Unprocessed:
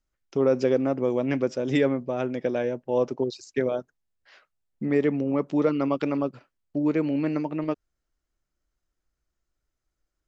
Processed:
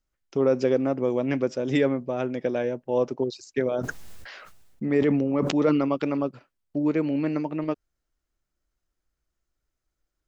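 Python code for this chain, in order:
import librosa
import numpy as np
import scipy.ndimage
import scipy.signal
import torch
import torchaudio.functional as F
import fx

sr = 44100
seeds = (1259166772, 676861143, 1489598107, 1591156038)

y = fx.sustainer(x, sr, db_per_s=30.0, at=(3.73, 5.85))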